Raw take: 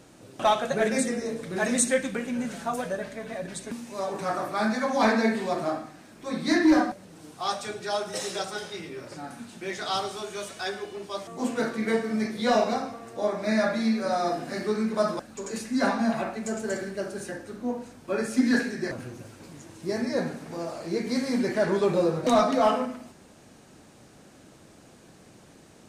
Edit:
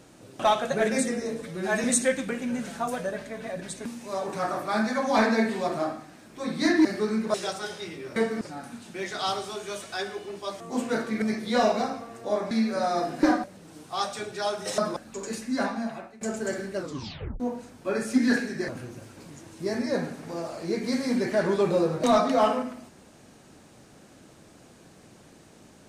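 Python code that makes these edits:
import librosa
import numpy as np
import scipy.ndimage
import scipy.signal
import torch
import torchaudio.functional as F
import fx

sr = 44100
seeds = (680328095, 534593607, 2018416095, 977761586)

y = fx.edit(x, sr, fx.stretch_span(start_s=1.42, length_s=0.28, factor=1.5),
    fx.swap(start_s=6.71, length_s=1.55, other_s=14.52, other_length_s=0.49),
    fx.move(start_s=11.89, length_s=0.25, to_s=9.08),
    fx.cut(start_s=13.43, length_s=0.37),
    fx.fade_out_to(start_s=15.53, length_s=0.91, floor_db=-18.5),
    fx.tape_stop(start_s=17.0, length_s=0.63), tone=tone)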